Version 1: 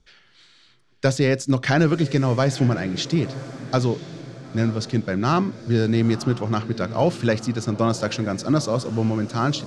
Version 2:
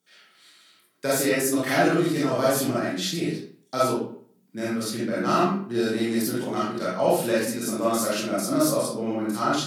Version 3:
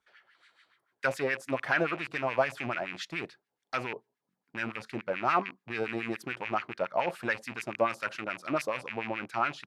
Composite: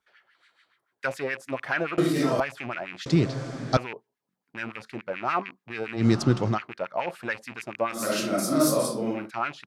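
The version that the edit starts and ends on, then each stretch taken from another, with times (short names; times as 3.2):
3
1.98–2.4 from 2
3.06–3.77 from 1
6.01–6.54 from 1, crossfade 0.10 s
8.01–9.19 from 2, crossfade 0.24 s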